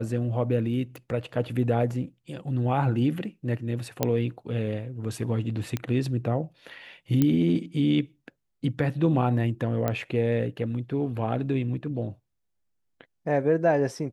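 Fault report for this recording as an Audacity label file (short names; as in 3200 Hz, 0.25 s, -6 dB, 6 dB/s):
0.960000	0.960000	pop
4.030000	4.030000	pop -8 dBFS
5.770000	5.770000	pop -15 dBFS
7.220000	7.220000	pop -10 dBFS
9.880000	9.880000	pop -13 dBFS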